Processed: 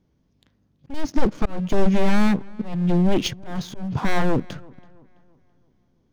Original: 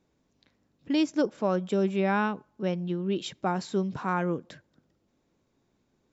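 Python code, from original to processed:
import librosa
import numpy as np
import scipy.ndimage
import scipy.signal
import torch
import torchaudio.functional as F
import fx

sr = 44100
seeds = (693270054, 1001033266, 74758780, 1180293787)

p1 = np.minimum(x, 2.0 * 10.0 ** (-28.5 / 20.0) - x)
p2 = fx.low_shelf(p1, sr, hz=280.0, db=12.0)
p3 = fx.level_steps(p2, sr, step_db=18)
p4 = p2 + (p3 * 10.0 ** (-2.0 / 20.0))
p5 = fx.leveller(p4, sr, passes=2)
p6 = fx.auto_swell(p5, sr, attack_ms=339.0)
p7 = fx.formant_shift(p6, sr, semitones=-2)
y = fx.echo_filtered(p7, sr, ms=331, feedback_pct=44, hz=3500.0, wet_db=-24)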